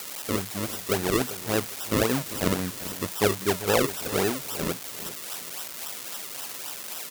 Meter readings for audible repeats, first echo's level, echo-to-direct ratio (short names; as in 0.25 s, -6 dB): 2, -14.5 dB, -14.0 dB